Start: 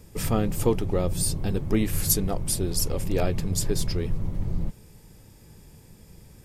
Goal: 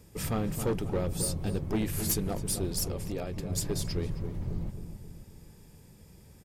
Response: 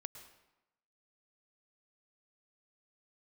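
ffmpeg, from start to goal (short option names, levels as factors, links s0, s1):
-filter_complex "[0:a]highpass=f=43:p=1,asettb=1/sr,asplit=3[s0][s1][s2];[s0]atrim=end=2.894[s3];[s1]atrim=start=2.89:end=3.5,asetpts=PTS-STARTPTS,afade=t=in:d=0.004:c=qsin,afade=t=out:st=0.606:d=0.004:c=qsin,acompressor=threshold=0.0447:ratio=8[s4];[s2]atrim=start=3.496[s5];[s3][s4]acrossfade=d=0.004:c1=hsin:c2=qsin[s6];[s6][s5]acrossfade=d=0.004:c1=qsin:c2=hsin,asoftclip=type=hard:threshold=0.106,asplit=2[s7][s8];[s8]adelay=267,lowpass=f=1400:p=1,volume=0.398,asplit=2[s9][s10];[s10]adelay=267,lowpass=f=1400:p=1,volume=0.54,asplit=2[s11][s12];[s12]adelay=267,lowpass=f=1400:p=1,volume=0.54,asplit=2[s13][s14];[s14]adelay=267,lowpass=f=1400:p=1,volume=0.54,asplit=2[s15][s16];[s16]adelay=267,lowpass=f=1400:p=1,volume=0.54,asplit=2[s17][s18];[s18]adelay=267,lowpass=f=1400:p=1,volume=0.54[s19];[s9][s11][s13][s15][s17][s19]amix=inputs=6:normalize=0[s20];[s7][s20]amix=inputs=2:normalize=0,volume=0.596"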